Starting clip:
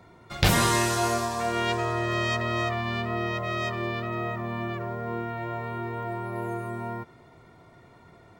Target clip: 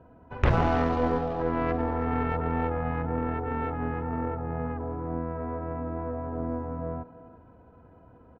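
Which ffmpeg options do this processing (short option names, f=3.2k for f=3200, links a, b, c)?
-filter_complex "[0:a]lowpass=1.9k,asplit=2[a][b];[b]adelay=330,highpass=300,lowpass=3.4k,asoftclip=type=hard:threshold=-18.5dB,volume=-14dB[c];[a][c]amix=inputs=2:normalize=0,asetrate=31183,aresample=44100,atempo=1.41421,aeval=exprs='0.316*(cos(1*acos(clip(val(0)/0.316,-1,1)))-cos(1*PI/2))+0.0251*(cos(6*acos(clip(val(0)/0.316,-1,1)))-cos(6*PI/2))':c=same"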